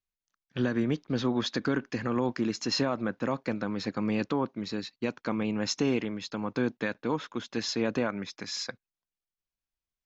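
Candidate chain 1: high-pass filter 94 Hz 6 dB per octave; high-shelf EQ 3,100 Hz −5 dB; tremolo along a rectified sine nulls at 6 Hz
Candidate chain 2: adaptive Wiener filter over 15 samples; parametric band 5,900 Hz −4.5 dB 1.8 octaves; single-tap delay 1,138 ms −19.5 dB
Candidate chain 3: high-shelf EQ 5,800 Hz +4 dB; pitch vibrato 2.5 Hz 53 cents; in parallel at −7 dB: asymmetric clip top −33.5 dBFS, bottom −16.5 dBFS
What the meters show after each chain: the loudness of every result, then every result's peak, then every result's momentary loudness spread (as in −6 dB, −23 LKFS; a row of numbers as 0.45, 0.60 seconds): −35.0, −32.0, −28.5 LKFS; −17.5, −16.0, −13.0 dBFS; 9, 11, 6 LU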